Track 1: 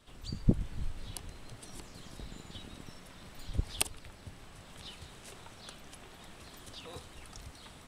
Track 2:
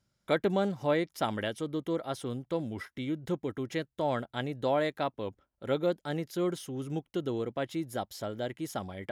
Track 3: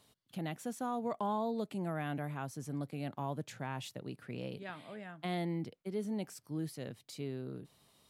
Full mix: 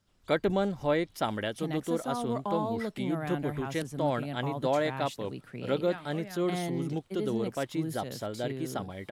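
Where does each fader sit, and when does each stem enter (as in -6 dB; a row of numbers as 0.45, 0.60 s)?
-18.5, +0.5, +2.5 dB; 0.00, 0.00, 1.25 s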